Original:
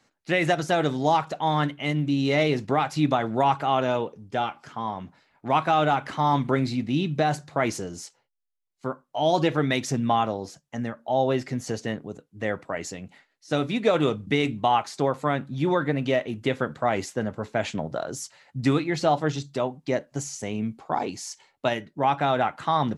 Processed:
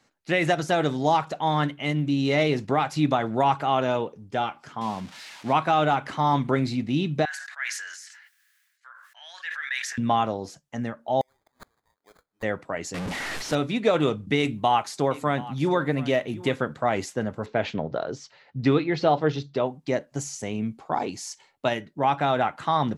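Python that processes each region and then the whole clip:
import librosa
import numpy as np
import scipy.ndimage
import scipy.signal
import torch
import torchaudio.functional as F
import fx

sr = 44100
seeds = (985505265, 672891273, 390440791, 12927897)

y = fx.chain(x, sr, fx.crossing_spikes(level_db=-25.5),
    fx.lowpass(hz=4200.0, slope=12),
    fx.peak_eq(hz=210.0, db=5.5, octaves=0.51), at=(4.81, 5.53))
y = fx.chain(y, sr, fx.ladder_highpass(hz=1600.0, resonance_pct=80),
    fx.sustainer(db_per_s=39.0), at=(7.25, 9.98))
y = fx.chain(y, sr, fx.highpass(hz=1300.0, slope=12),
    fx.sample_hold(seeds[0], rate_hz=2800.0, jitter_pct=0),
    fx.gate_flip(shuts_db=-33.0, range_db=-32), at=(11.21, 12.43))
y = fx.chain(y, sr, fx.delta_mod(bps=64000, step_db=-24.0),
    fx.high_shelf(hz=6100.0, db=-11.0), at=(12.94, 13.55))
y = fx.chain(y, sr, fx.high_shelf(hz=10000.0, db=10.0),
    fx.echo_single(ms=728, db=-17.5), at=(14.38, 16.56))
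y = fx.chain(y, sr, fx.lowpass(hz=4900.0, slope=24),
    fx.peak_eq(hz=440.0, db=5.5, octaves=0.44), at=(17.46, 19.66))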